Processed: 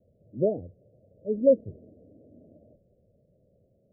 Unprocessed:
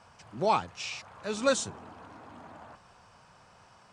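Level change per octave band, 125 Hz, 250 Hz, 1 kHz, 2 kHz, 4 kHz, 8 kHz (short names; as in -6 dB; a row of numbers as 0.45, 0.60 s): +4.0 dB, +5.5 dB, under -15 dB, under -40 dB, under -40 dB, under -40 dB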